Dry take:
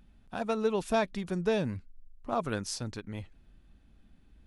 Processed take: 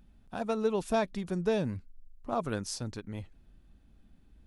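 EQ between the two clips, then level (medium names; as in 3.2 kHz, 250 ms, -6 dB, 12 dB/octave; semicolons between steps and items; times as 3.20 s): peaking EQ 2.3 kHz -3.5 dB 2.1 oct; 0.0 dB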